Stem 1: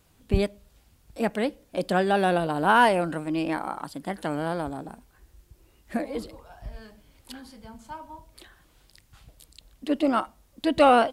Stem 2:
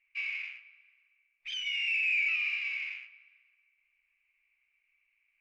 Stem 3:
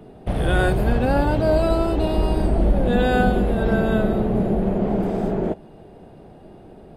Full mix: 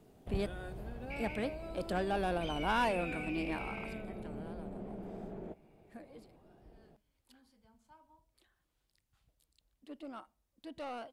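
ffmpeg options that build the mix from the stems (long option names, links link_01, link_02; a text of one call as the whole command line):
ffmpeg -i stem1.wav -i stem2.wav -i stem3.wav -filter_complex "[0:a]asoftclip=type=tanh:threshold=-15dB,volume=-10dB,afade=type=out:start_time=3.52:duration=0.57:silence=0.251189[link_01];[1:a]acompressor=threshold=-36dB:ratio=6,adelay=950,volume=-7.5dB[link_02];[2:a]acompressor=threshold=-22dB:ratio=6,volume=-18.5dB[link_03];[link_01][link_02][link_03]amix=inputs=3:normalize=0" out.wav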